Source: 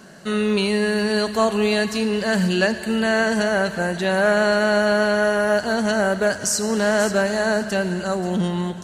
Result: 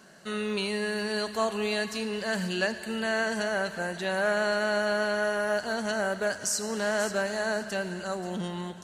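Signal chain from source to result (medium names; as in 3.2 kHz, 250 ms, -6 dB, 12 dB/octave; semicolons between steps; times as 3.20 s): bass shelf 390 Hz -6.5 dB; trim -7 dB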